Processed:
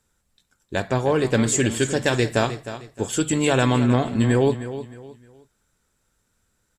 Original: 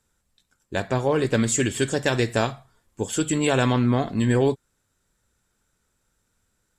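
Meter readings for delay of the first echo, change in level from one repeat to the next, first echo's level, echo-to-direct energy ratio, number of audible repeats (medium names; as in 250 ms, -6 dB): 309 ms, -10.0 dB, -12.5 dB, -12.0 dB, 3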